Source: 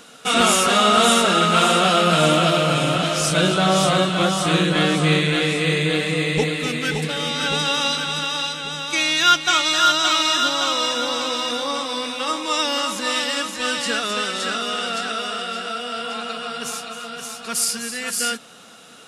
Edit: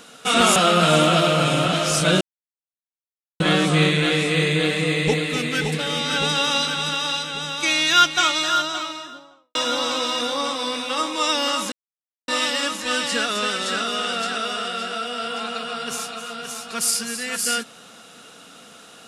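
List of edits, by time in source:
0.56–1.86 cut
3.51–4.7 mute
9.37–10.85 studio fade out
13.02 insert silence 0.56 s

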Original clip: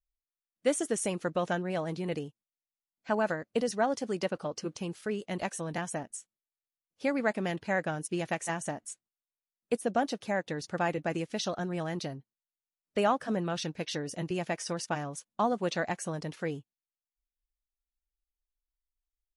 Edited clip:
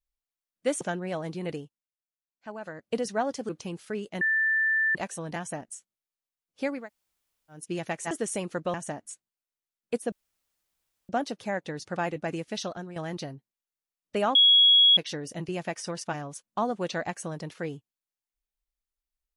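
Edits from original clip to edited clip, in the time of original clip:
0.81–1.44 move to 8.53
2.2–3.55 dip -11 dB, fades 0.28 s
4.12–4.65 cut
5.37 add tone 1770 Hz -21.5 dBFS 0.74 s
7.2–8.02 room tone, crossfade 0.24 s
9.91 insert room tone 0.97 s
11.43–11.78 fade out, to -9.5 dB
13.17–13.79 bleep 3330 Hz -14.5 dBFS

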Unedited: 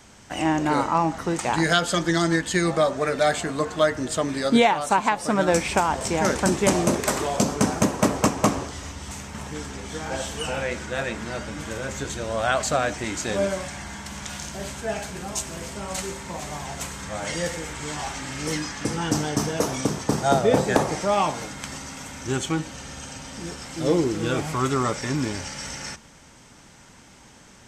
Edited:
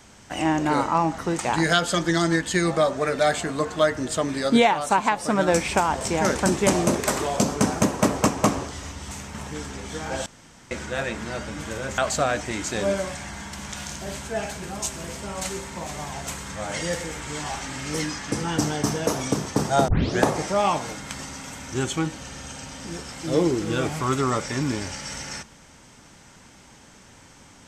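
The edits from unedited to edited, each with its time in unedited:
10.26–10.71 room tone
11.98–12.51 cut
20.41 tape start 0.32 s

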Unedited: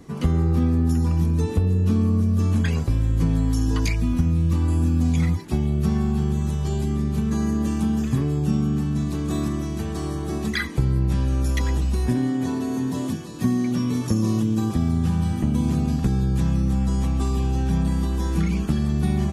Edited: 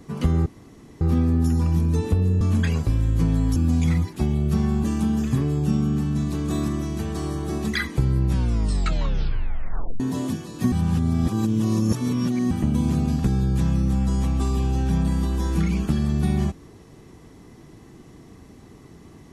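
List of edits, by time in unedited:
0.46 insert room tone 0.55 s
1.86–2.42 cut
3.57–4.88 cut
6.16–7.64 cut
11.11 tape stop 1.69 s
13.52–15.31 reverse

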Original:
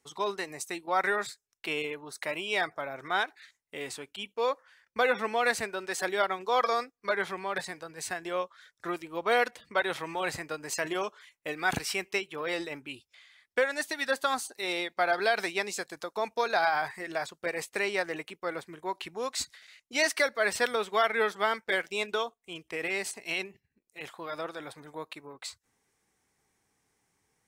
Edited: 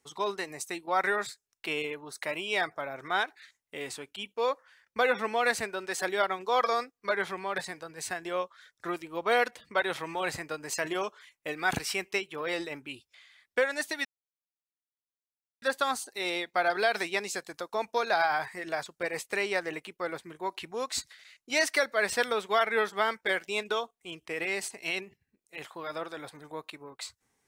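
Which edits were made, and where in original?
14.05 insert silence 1.57 s

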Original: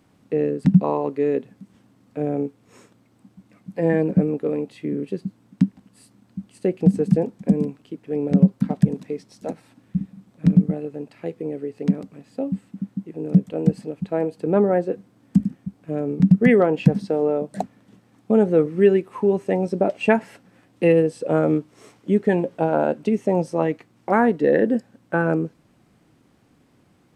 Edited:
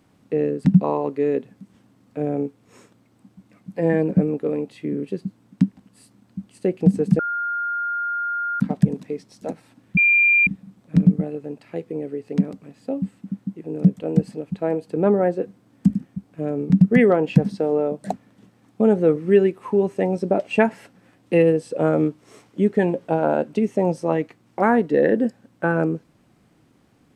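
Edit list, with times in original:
7.19–8.6 bleep 1410 Hz -22 dBFS
9.97 add tone 2390 Hz -12.5 dBFS 0.50 s

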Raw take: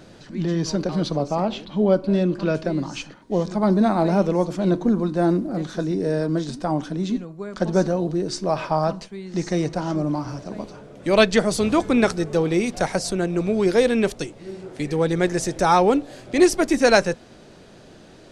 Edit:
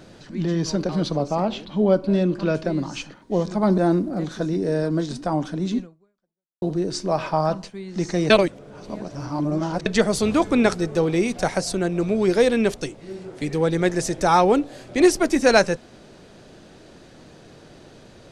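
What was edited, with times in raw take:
3.78–5.16 cut
7.18–8 fade out exponential
9.68–11.24 reverse

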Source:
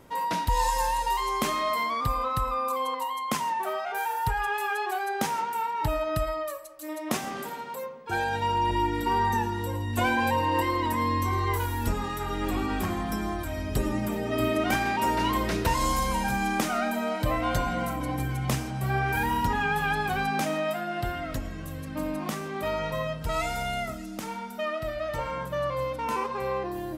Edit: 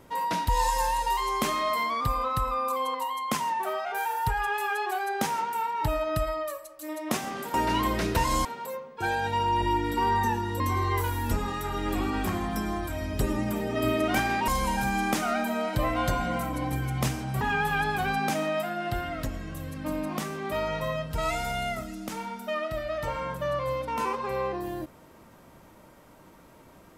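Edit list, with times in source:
9.69–11.16 cut
15.04–15.95 move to 7.54
18.88–19.52 cut

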